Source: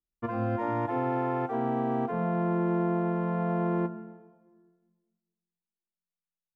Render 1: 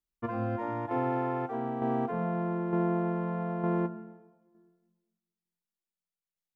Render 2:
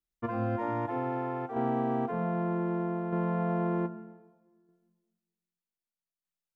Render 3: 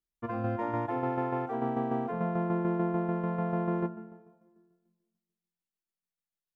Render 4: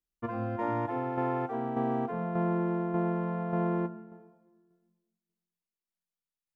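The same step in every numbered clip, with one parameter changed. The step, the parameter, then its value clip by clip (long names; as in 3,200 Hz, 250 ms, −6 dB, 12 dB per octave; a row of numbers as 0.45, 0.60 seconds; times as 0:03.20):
shaped tremolo, speed: 1.1, 0.64, 6.8, 1.7 Hertz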